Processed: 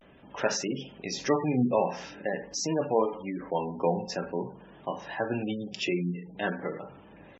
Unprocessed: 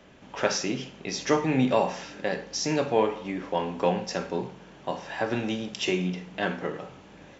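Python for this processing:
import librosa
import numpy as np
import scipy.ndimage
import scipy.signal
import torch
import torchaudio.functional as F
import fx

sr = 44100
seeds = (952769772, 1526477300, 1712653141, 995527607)

y = fx.spec_gate(x, sr, threshold_db=-20, keep='strong')
y = fx.vibrato(y, sr, rate_hz=0.47, depth_cents=63.0)
y = y * librosa.db_to_amplitude(-2.0)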